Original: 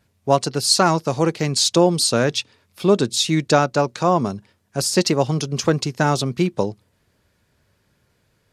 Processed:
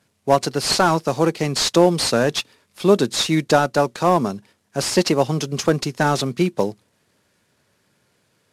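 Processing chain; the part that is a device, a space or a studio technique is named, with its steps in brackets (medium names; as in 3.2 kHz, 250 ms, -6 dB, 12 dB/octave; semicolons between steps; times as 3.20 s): early wireless headset (high-pass 150 Hz 12 dB/octave; CVSD coder 64 kbps); trim +1.5 dB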